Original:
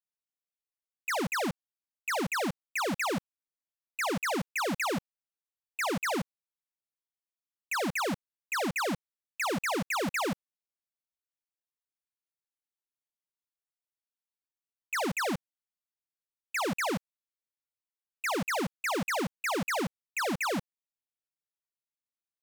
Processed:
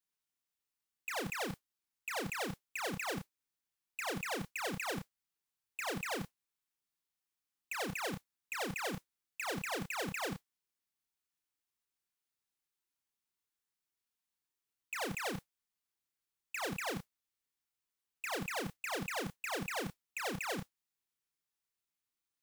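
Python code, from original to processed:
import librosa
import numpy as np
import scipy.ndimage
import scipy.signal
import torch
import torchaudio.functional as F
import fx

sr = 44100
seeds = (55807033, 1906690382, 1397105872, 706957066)

y = fx.peak_eq(x, sr, hz=590.0, db=-11.5, octaves=0.36)
y = fx.over_compress(y, sr, threshold_db=-35.0, ratio=-0.5)
y = fx.mod_noise(y, sr, seeds[0], snr_db=19)
y = fx.doubler(y, sr, ms=31.0, db=-5.5)
y = y * 10.0 ** (-2.5 / 20.0)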